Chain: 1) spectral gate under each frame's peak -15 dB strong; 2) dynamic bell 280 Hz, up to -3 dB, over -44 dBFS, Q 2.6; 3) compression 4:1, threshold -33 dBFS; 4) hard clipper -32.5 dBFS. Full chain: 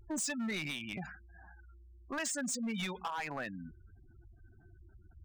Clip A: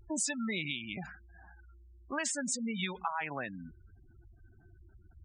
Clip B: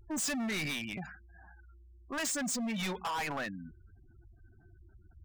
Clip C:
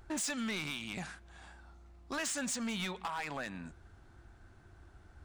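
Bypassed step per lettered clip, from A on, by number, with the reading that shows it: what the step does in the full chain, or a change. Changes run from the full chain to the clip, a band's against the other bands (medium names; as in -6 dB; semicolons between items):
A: 4, distortion -11 dB; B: 3, crest factor change -2.5 dB; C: 1, 4 kHz band +2.0 dB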